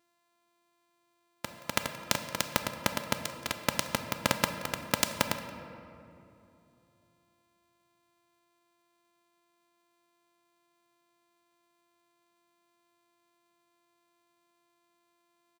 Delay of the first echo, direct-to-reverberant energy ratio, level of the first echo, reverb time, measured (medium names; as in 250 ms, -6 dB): 175 ms, 7.0 dB, -19.5 dB, 2.8 s